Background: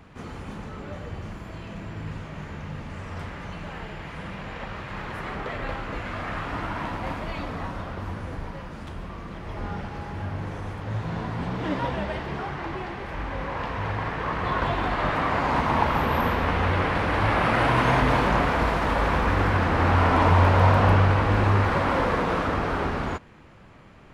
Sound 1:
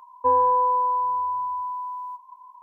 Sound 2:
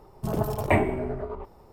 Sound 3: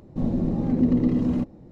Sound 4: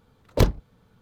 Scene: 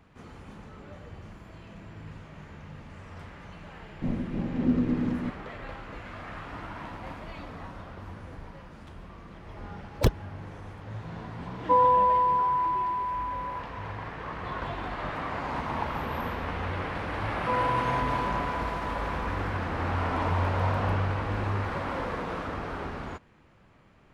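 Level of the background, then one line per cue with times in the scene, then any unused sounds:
background -9 dB
3.86 s: add 3 -2.5 dB + random flutter of the level
9.64 s: add 4 -1.5 dB + expander on every frequency bin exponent 3
11.45 s: add 1 -1.5 dB
17.23 s: add 1 -10 dB
not used: 2

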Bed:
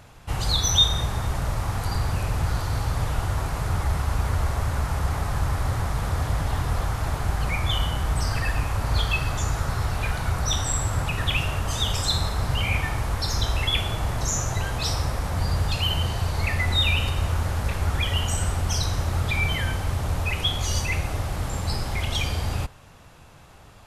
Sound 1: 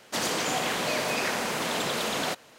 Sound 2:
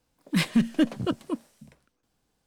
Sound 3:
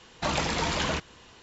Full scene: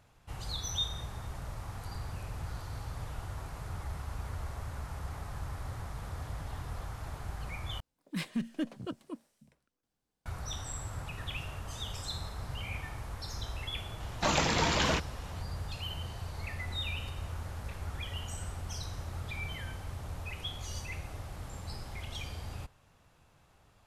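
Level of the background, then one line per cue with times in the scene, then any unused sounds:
bed -15 dB
7.80 s: replace with 2 -12 dB
14.00 s: add 3 -0.5 dB
not used: 1

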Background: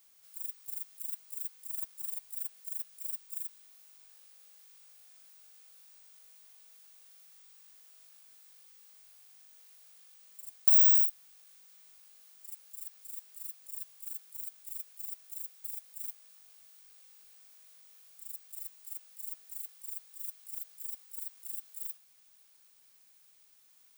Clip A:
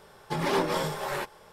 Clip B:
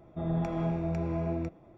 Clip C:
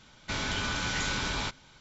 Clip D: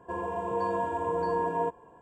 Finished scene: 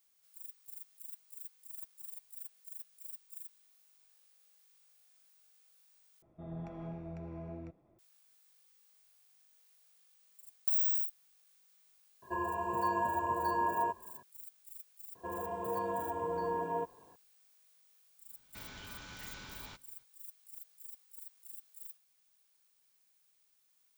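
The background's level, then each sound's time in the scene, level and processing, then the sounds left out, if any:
background -9 dB
6.22 s: replace with B -13 dB + treble shelf 3.8 kHz -6 dB
12.22 s: add D -6 dB + rippled EQ curve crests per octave 1.4, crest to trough 15 dB
15.15 s: add D -6.5 dB
18.26 s: add C -18 dB, fades 0.05 s
not used: A

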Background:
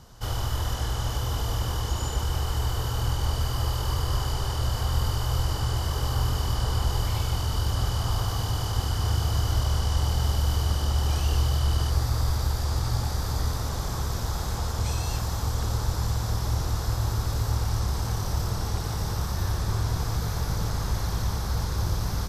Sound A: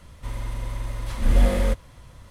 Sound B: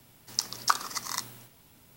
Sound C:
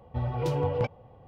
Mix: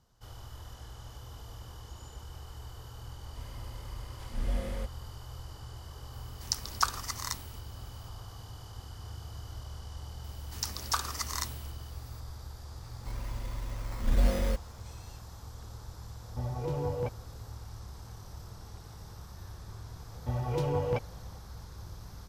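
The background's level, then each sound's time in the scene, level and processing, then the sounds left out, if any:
background -18.5 dB
3.12 s: add A -14.5 dB
6.13 s: add B -3 dB
10.24 s: add B -0.5 dB + saturation -19 dBFS
12.82 s: add A -7.5 dB + decimation with a swept rate 11×, swing 60% 1.1 Hz
16.22 s: add C -5 dB + treble shelf 2.1 kHz -10 dB
20.12 s: add C -2.5 dB

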